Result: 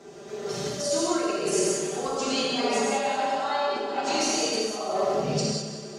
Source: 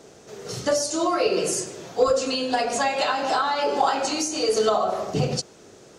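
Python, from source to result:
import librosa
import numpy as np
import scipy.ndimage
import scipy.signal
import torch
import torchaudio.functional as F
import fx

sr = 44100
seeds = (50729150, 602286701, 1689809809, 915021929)

p1 = scipy.signal.sosfilt(scipy.signal.butter(2, 56.0, 'highpass', fs=sr, output='sos'), x)
p2 = fx.high_shelf(p1, sr, hz=6100.0, db=-8.5)
p3 = p2 + 0.76 * np.pad(p2, (int(5.1 * sr / 1000.0), 0))[:len(p2)]
p4 = fx.over_compress(p3, sr, threshold_db=-25.0, ratio=-0.5)
p5 = p4 + fx.echo_heads(p4, sr, ms=94, heads='first and second', feedback_pct=58, wet_db=-13, dry=0)
p6 = fx.rev_gated(p5, sr, seeds[0], gate_ms=230, shape='flat', drr_db=-4.5)
y = p6 * librosa.db_to_amplitude(-7.0)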